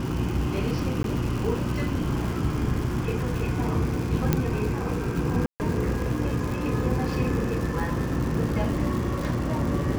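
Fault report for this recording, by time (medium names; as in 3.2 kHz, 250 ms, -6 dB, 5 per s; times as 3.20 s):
crackle 300 per s -31 dBFS
hum 60 Hz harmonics 6 -31 dBFS
1.03–1.04 s: dropout 12 ms
4.33 s: pop -8 dBFS
5.46–5.60 s: dropout 139 ms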